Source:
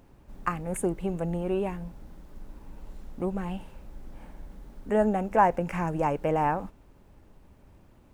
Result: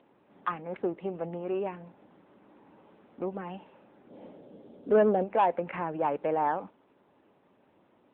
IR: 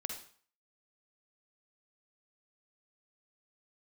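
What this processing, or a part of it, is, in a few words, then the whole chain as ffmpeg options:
telephone: -filter_complex "[0:a]asplit=3[s0][s1][s2];[s0]afade=t=out:st=4.09:d=0.02[s3];[s1]equalizer=f=125:t=o:w=1:g=6,equalizer=f=250:t=o:w=1:g=5,equalizer=f=500:t=o:w=1:g=10,equalizer=f=1000:t=o:w=1:g=-4,equalizer=f=2000:t=o:w=1:g=-7,equalizer=f=4000:t=o:w=1:g=8,equalizer=f=8000:t=o:w=1:g=7,afade=t=in:st=4.09:d=0.02,afade=t=out:st=5.23:d=0.02[s4];[s2]afade=t=in:st=5.23:d=0.02[s5];[s3][s4][s5]amix=inputs=3:normalize=0,highpass=290,lowpass=3500,asoftclip=type=tanh:threshold=0.158" -ar 8000 -c:a libopencore_amrnb -b:a 10200

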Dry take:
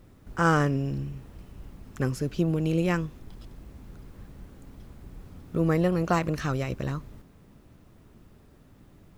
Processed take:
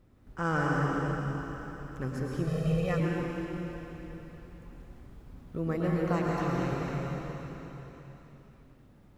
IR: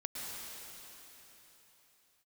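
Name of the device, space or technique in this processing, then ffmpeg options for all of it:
swimming-pool hall: -filter_complex "[1:a]atrim=start_sample=2205[s0];[0:a][s0]afir=irnorm=-1:irlink=0,highshelf=f=4100:g=-6.5,asettb=1/sr,asplit=3[s1][s2][s3];[s1]atrim=end=2.474[s4];[s2]atrim=start=2.47:end=3,asetpts=PTS-STARTPTS,afade=t=in:d=0.004:c=qsin,afade=t=out:st=0.526:d=0.004:c=qsin,aecho=1:1:1.6:0.97,atrim=end_sample=23373[s5];[s3]atrim=start=2.996[s6];[s4][s5]acrossfade=d=0.004:c1=hsin:c2=qsin[s7];[s7][s6]acrossfade=d=0.004:c1=qsin:c2=hsin,volume=0.596"

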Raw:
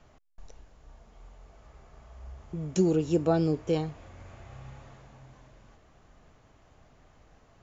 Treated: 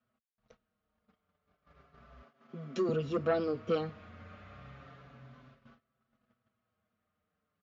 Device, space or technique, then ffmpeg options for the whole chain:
barber-pole flanger into a guitar amplifier: -filter_complex "[0:a]asettb=1/sr,asplit=3[s0][s1][s2];[s0]atrim=end=2.214[s3];[s1]atrim=start=2.21:end=2.89,asetpts=PTS-STARTPTS,afade=t=in:d=0.004:c=qsin,afade=t=out:st=0.676:d=0.004:c=qsin,highpass=f=200:w=0.5412,highpass=f=200:w=1.3066[s4];[s2]atrim=start=2.886[s5];[s3][s4]acrossfade=d=0.004:c1=hsin:c2=qsin[s6];[s6][s5]acrossfade=d=0.004:c1=qsin:c2=hsin,asplit=2[s7][s8];[s8]adelay=5.7,afreqshift=-0.32[s9];[s7][s9]amix=inputs=2:normalize=1,asoftclip=type=tanh:threshold=0.0841,highpass=110,equalizer=f=230:t=q:w=4:g=9,equalizer=f=330:t=q:w=4:g=-9,equalizer=f=870:t=q:w=4:g=-10,equalizer=f=1300:t=q:w=4:g=8,lowpass=f=4400:w=0.5412,lowpass=f=4400:w=1.3066,agate=range=0.0891:threshold=0.00112:ratio=16:detection=peak,volume=1.26"

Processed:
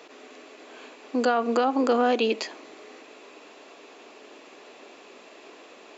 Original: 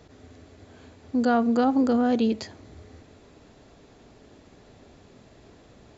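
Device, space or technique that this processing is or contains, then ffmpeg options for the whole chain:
laptop speaker: -af "highpass=f=320:w=0.5412,highpass=f=320:w=1.3066,equalizer=f=1100:t=o:w=0.37:g=5.5,equalizer=f=2600:t=o:w=0.49:g=9.5,alimiter=limit=0.106:level=0:latency=1:release=148,volume=2"

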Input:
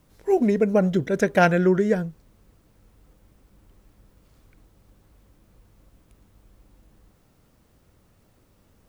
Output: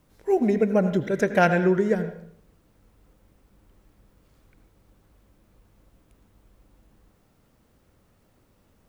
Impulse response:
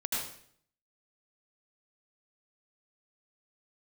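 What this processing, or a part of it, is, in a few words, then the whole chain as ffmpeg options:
filtered reverb send: -filter_complex "[0:a]asplit=2[s0][s1];[s1]highpass=150,lowpass=3800[s2];[1:a]atrim=start_sample=2205[s3];[s2][s3]afir=irnorm=-1:irlink=0,volume=0.237[s4];[s0][s4]amix=inputs=2:normalize=0,volume=0.708"

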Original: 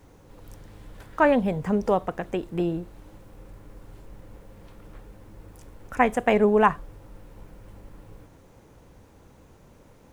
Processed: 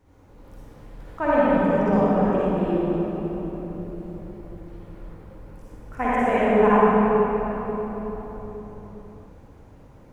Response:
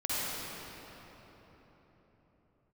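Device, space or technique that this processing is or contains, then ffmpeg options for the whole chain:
swimming-pool hall: -filter_complex "[1:a]atrim=start_sample=2205[s0];[0:a][s0]afir=irnorm=-1:irlink=0,highshelf=f=3000:g=-7,volume=0.531"

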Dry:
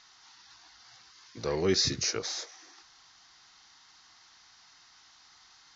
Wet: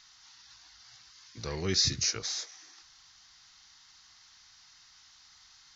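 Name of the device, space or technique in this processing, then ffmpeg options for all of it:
smiley-face EQ: -af "lowshelf=f=120:g=6.5,equalizer=f=480:t=o:w=2.5:g=-9,highshelf=f=6100:g=4"

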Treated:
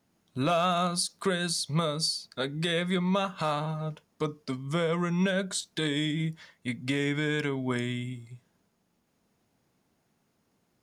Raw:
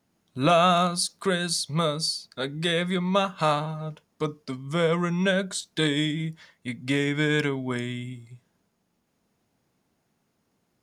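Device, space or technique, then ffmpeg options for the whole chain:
clipper into limiter: -af "asoftclip=type=hard:threshold=0.266,alimiter=limit=0.126:level=0:latency=1:release=182"

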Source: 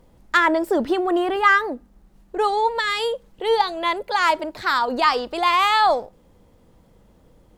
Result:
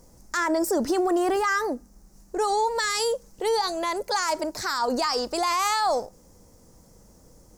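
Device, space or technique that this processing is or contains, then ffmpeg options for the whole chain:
over-bright horn tweeter: -af "highshelf=f=4400:t=q:w=3:g=10,alimiter=limit=0.158:level=0:latency=1:release=49"

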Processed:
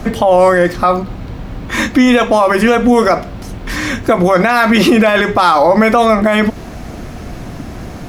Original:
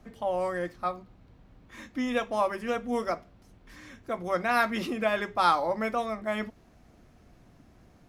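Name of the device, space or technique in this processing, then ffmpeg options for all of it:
loud club master: -af "acompressor=threshold=0.0158:ratio=1.5,asoftclip=type=hard:threshold=0.0944,alimiter=level_in=35.5:limit=0.891:release=50:level=0:latency=1,volume=0.891"

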